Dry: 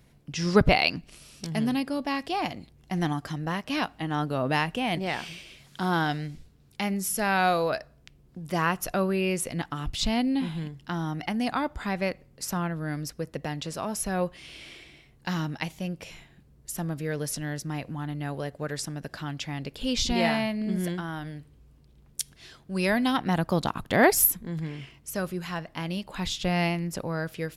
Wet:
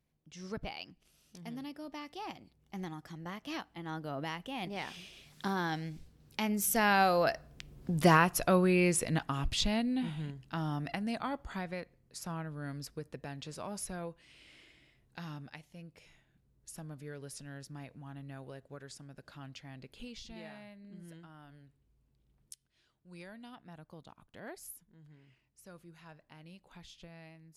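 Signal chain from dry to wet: recorder AGC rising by 6.4 dB/s; Doppler pass-by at 7.94, 21 m/s, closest 14 m

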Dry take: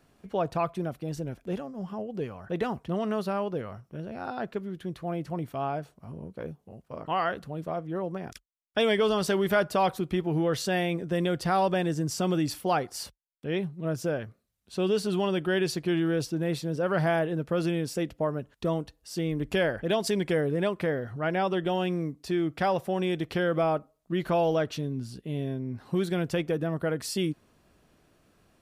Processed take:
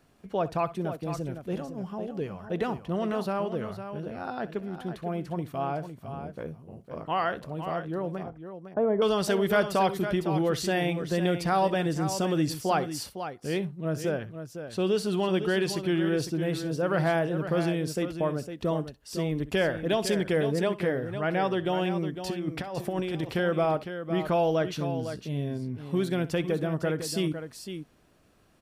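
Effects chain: 8.23–9.02 LPF 1100 Hz 24 dB/oct; 22.13–23.28 negative-ratio compressor -30 dBFS, ratio -0.5; tapped delay 63/506 ms -17.5/-9.5 dB

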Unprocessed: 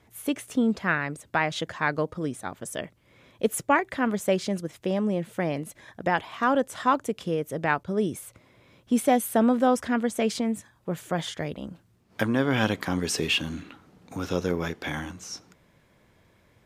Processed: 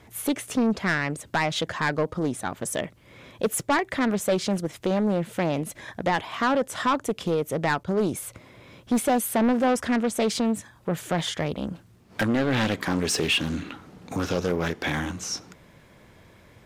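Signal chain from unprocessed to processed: in parallel at 0 dB: compressor, threshold -35 dBFS, peak gain reduction 18 dB; on the sum: soft clip -18.5 dBFS, distortion -12 dB; Doppler distortion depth 0.28 ms; gain +2.5 dB

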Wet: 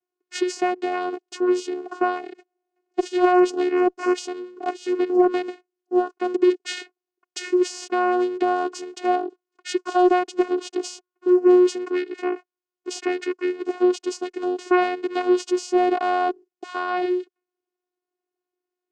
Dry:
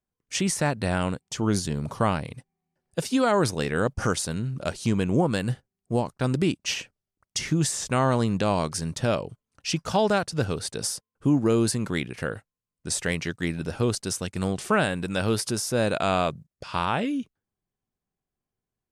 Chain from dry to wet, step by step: vocoder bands 8, saw 361 Hz; added harmonics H 5 -30 dB, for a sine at -9.5 dBFS; gain +4 dB

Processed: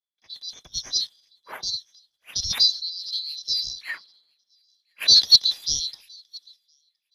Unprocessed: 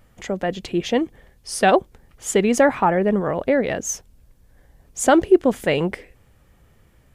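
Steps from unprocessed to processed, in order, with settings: band-swap scrambler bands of 4000 Hz; formant shift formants -3 st; thin delay 1.017 s, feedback 42%, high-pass 2500 Hz, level -14.5 dB; random-step tremolo 3.2 Hz; three-band expander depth 100%; gain -6.5 dB

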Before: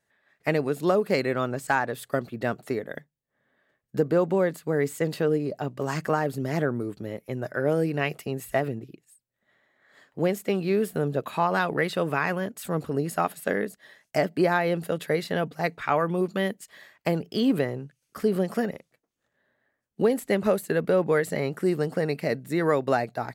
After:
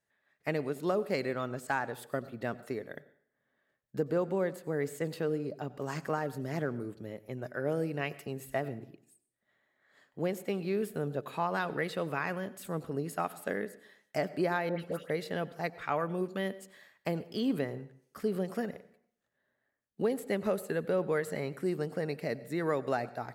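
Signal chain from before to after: 14.69–15.1 dispersion highs, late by 0.108 s, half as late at 1600 Hz; on a send: reverb RT60 0.65 s, pre-delay 84 ms, DRR 17.5 dB; on the sum: gain -8 dB

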